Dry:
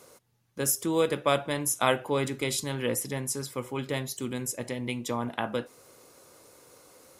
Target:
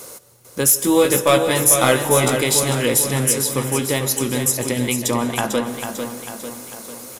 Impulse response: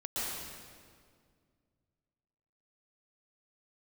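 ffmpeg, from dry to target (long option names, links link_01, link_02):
-filter_complex "[0:a]highshelf=frequency=6300:gain=10.5,asplit=2[link_01][link_02];[link_02]acompressor=threshold=-33dB:ratio=6,volume=2.5dB[link_03];[link_01][link_03]amix=inputs=2:normalize=0,asoftclip=type=tanh:threshold=-12.5dB,asettb=1/sr,asplit=3[link_04][link_05][link_06];[link_04]atrim=end=0.824[link_07];[link_05]atrim=start=0.82:end=2.37,asetpts=PTS-STARTPTS,afade=type=in:duration=0.004:curve=qsin,afade=type=out:start_time=1.546:duration=0.004:curve=qsin,asplit=2[link_08][link_09];[link_09]adelay=16,volume=-2dB[link_10];[link_08][link_10]amix=inputs=2:normalize=0,atrim=end_sample=68355[link_11];[link_06]atrim=start=2.366[link_12];[link_07][link_11]acrossfade=duration=0.004:curve1=hsin:curve2=qsin[link_13];[link_13][link_12]acrossfade=duration=0.004:curve1=qsin:curve2=hsin,aecho=1:1:447|894|1341|1788|2235|2682:0.422|0.219|0.114|0.0593|0.0308|0.016,asplit=2[link_14][link_15];[1:a]atrim=start_sample=2205,adelay=15[link_16];[link_15][link_16]afir=irnorm=-1:irlink=0,volume=-18.5dB[link_17];[link_14][link_17]amix=inputs=2:normalize=0,volume=5.5dB"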